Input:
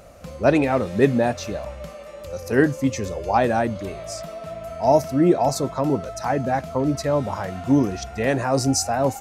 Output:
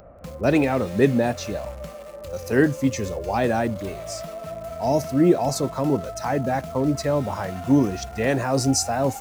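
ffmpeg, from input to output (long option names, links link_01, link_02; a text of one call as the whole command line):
ffmpeg -i in.wav -filter_complex "[0:a]acrossover=split=490|1700[link_01][link_02][link_03];[link_02]alimiter=limit=-20dB:level=0:latency=1[link_04];[link_03]acrusher=bits=7:mix=0:aa=0.000001[link_05];[link_01][link_04][link_05]amix=inputs=3:normalize=0" out.wav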